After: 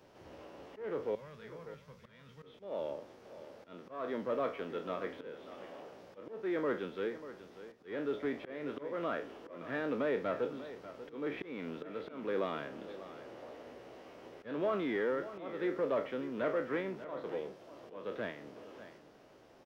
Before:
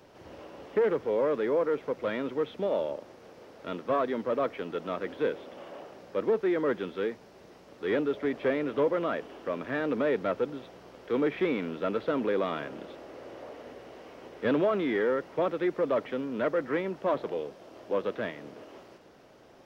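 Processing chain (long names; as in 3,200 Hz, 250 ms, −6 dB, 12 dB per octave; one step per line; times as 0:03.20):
peak hold with a decay on every bin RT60 0.30 s
0:01.15–0:02.43: drawn EQ curve 180 Hz 0 dB, 290 Hz −26 dB, 5,300 Hz −1 dB
volume swells 267 ms
on a send: single-tap delay 591 ms −14 dB
on the sum: level −6.5 dB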